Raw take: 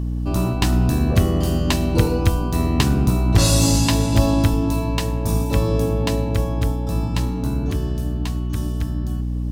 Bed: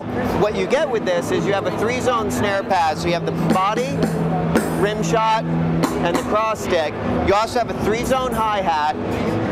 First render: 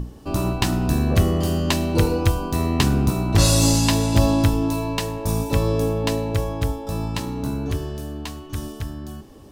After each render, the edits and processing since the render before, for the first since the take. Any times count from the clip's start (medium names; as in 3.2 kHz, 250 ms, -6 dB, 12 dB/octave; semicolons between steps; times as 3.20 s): hum notches 60/120/180/240/300/360 Hz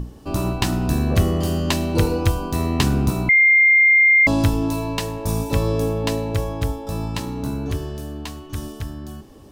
3.29–4.27 s: bleep 2.11 kHz -10 dBFS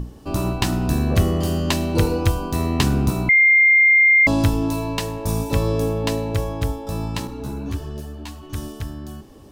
7.27–8.43 s: three-phase chorus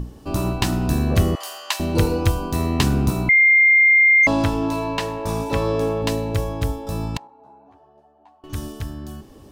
1.35–1.80 s: high-pass 800 Hz 24 dB/octave; 4.23–6.02 s: overdrive pedal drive 11 dB, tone 2 kHz, clips at -6 dBFS; 7.17–8.44 s: band-pass filter 770 Hz, Q 7.4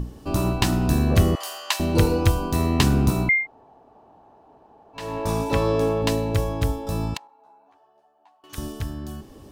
3.35–5.05 s: room tone, crossfade 0.24 s; 7.14–8.58 s: high-pass 1.2 kHz 6 dB/octave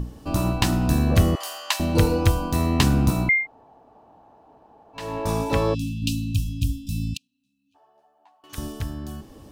5.74–7.75 s: spectral selection erased 280–2400 Hz; band-stop 390 Hz, Q 12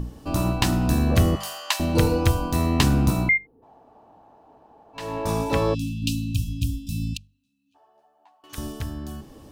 3.37–3.63 s: time-frequency box 520–9800 Hz -18 dB; hum notches 50/100/150/200 Hz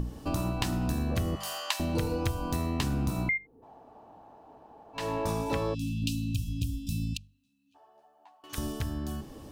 compression 4:1, threshold -28 dBFS, peak gain reduction 13 dB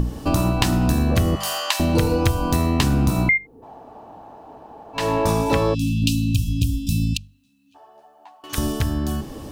trim +11 dB; peak limiter -2 dBFS, peak gain reduction 3 dB